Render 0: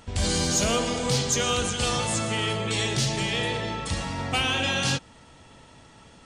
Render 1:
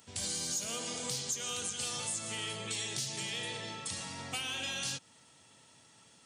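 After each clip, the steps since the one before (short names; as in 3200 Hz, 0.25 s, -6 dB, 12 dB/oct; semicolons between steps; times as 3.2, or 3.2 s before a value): HPF 98 Hz 24 dB/oct; pre-emphasis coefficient 0.8; compressor 4:1, threshold -34 dBFS, peak gain reduction 10 dB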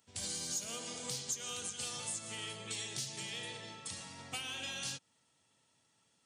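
upward expander 1.5:1, over -55 dBFS; gain -1.5 dB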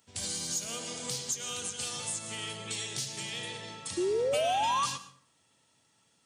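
painted sound rise, 3.97–4.86, 340–1200 Hz -33 dBFS; plate-style reverb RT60 0.52 s, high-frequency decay 0.65×, pre-delay 95 ms, DRR 14 dB; gain +4.5 dB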